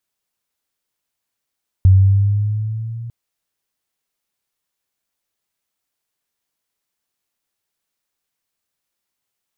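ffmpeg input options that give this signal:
-f lavfi -i "aevalsrc='pow(10,(-5-21.5*t/1.25)/20)*sin(2*PI*93.5*1.25/(4*log(2)/12)*(exp(4*log(2)/12*t/1.25)-1))':d=1.25:s=44100"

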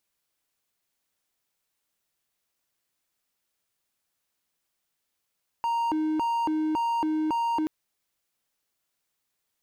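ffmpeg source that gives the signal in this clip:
-f lavfi -i "aevalsrc='0.0841*(1-4*abs(mod((621*t+310/1.8*(0.5-abs(mod(1.8*t,1)-0.5)))+0.25,1)-0.5))':d=2.03:s=44100"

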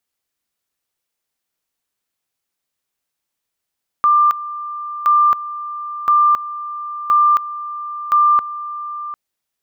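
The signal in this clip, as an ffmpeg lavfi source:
-f lavfi -i "aevalsrc='pow(10,(-9-15*gte(mod(t,1.02),0.27))/20)*sin(2*PI*1190*t)':d=5.1:s=44100"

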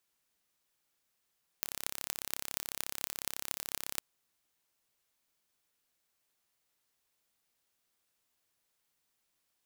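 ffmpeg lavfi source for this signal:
-f lavfi -i "aevalsrc='0.562*eq(mod(n,1297),0)*(0.5+0.5*eq(mod(n,10376),0))':d=2.38:s=44100"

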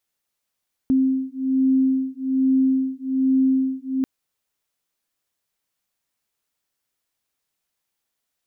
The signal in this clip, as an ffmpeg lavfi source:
-f lavfi -i "aevalsrc='0.1*(sin(2*PI*263*t)+sin(2*PI*264.2*t))':d=3.14:s=44100"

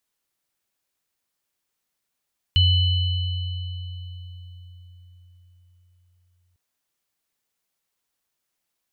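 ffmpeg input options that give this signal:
-f lavfi -i "aevalsrc='0.188*pow(10,-3*t/4.84)*sin(2*PI*89.1*t)+0.133*pow(10,-3*t/3.07)*sin(2*PI*2990*t)+0.0282*pow(10,-3*t/2.84)*sin(2*PI*4150*t)':d=4:s=44100"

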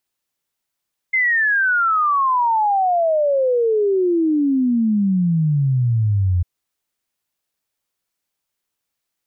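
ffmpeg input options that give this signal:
-f lavfi -i "aevalsrc='0.2*clip(min(t,5.3-t)/0.01,0,1)*sin(2*PI*2100*5.3/log(86/2100)*(exp(log(86/2100)*t/5.3)-1))':d=5.3:s=44100"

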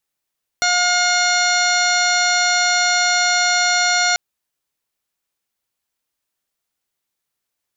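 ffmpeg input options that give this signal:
-f lavfi -i "aevalsrc='0.0891*sin(2*PI*715*t)+0.112*sin(2*PI*1430*t)+0.0794*sin(2*PI*2145*t)+0.0251*sin(2*PI*2860*t)+0.0398*sin(2*PI*3575*t)+0.0891*sin(2*PI*4290*t)+0.0141*sin(2*PI*5005*t)+0.075*sin(2*PI*5720*t)+0.0211*sin(2*PI*6435*t)+0.0398*sin(2*PI*7150*t)':d=3.54:s=44100"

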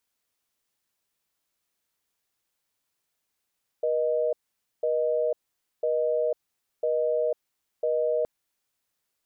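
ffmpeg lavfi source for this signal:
-f lavfi -i "aevalsrc='0.0562*(sin(2*PI*480*t)+sin(2*PI*620*t))*clip(min(mod(t,1),0.5-mod(t,1))/0.005,0,1)':d=4.42:s=44100"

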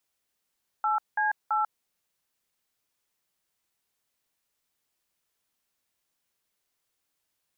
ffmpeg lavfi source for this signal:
-f lavfi -i "aevalsrc='0.0531*clip(min(mod(t,0.333),0.143-mod(t,0.333))/0.002,0,1)*(eq(floor(t/0.333),0)*(sin(2*PI*852*mod(t,0.333))+sin(2*PI*1336*mod(t,0.333)))+eq(floor(t/0.333),1)*(sin(2*PI*852*mod(t,0.333))+sin(2*PI*1633*mod(t,0.333)))+eq(floor(t/0.333),2)*(sin(2*PI*852*mod(t,0.333))+sin(2*PI*1336*mod(t,0.333))))':d=0.999:s=44100"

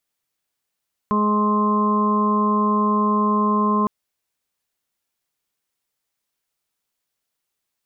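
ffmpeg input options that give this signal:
-f lavfi -i "aevalsrc='0.112*sin(2*PI*210*t)+0.0531*sin(2*PI*420*t)+0.0211*sin(2*PI*630*t)+0.0126*sin(2*PI*840*t)+0.112*sin(2*PI*1050*t)+0.0133*sin(2*PI*1260*t)':d=2.76:s=44100"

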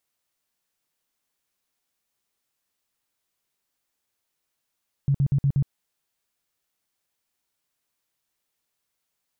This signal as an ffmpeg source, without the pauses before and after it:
-f lavfi -i "aevalsrc='0.141*sin(2*PI*139*mod(t,0.12))*lt(mod(t,0.12),9/139)':d=0.6:s=44100"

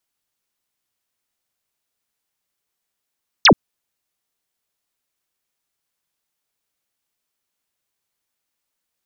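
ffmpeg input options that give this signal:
-f lavfi -i "aevalsrc='0.501*clip(t/0.002,0,1)*clip((0.08-t)/0.002,0,1)*sin(2*PI*6500*0.08/log(140/6500)*(exp(log(140/6500)*t/0.08)-1))':d=0.08:s=44100"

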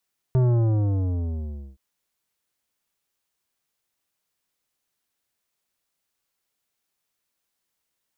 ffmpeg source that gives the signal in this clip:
-f lavfi -i "aevalsrc='0.141*clip((1.42-t)/1.42,0,1)*tanh(3.98*sin(2*PI*130*1.42/log(65/130)*(exp(log(65/130)*t/1.42)-1)))/tanh(3.98)':d=1.42:s=44100"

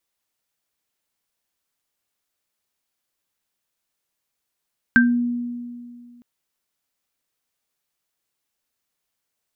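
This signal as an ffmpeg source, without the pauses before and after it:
-f lavfi -i "aevalsrc='0.251*pow(10,-3*t/2.23)*sin(2*PI*241*t)+0.447*pow(10,-3*t/0.22)*sin(2*PI*1570*t)':d=1.26:s=44100"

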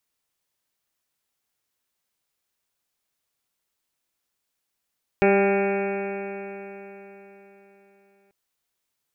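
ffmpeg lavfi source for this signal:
-f lavfi -i "aevalsrc='0.0794*pow(10,-3*t/3.97)*sin(2*PI*197.07*t)+0.15*pow(10,-3*t/3.97)*sin(2*PI*394.54*t)+0.075*pow(10,-3*t/3.97)*sin(2*PI*592.81*t)+0.0668*pow(10,-3*t/3.97)*sin(2*PI*792.28*t)+0.0112*pow(10,-3*t/3.97)*sin(2*PI*993.34*t)+0.00841*pow(10,-3*t/3.97)*sin(2*PI*1196.38*t)+0.0282*pow(10,-3*t/3.97)*sin(2*PI*1401.79*t)+0.0211*pow(10,-3*t/3.97)*sin(2*PI*1609.93*t)+0.0251*pow(10,-3*t/3.97)*sin(2*PI*1821.17*t)+0.00891*pow(10,-3*t/3.97)*sin(2*PI*2035.88*t)+0.0398*pow(10,-3*t/3.97)*sin(2*PI*2254.39*t)+0.0316*pow(10,-3*t/3.97)*sin(2*PI*2477.04*t)+0.0126*pow(10,-3*t/3.97)*sin(2*PI*2704.15*t)':d=3.09:s=44100"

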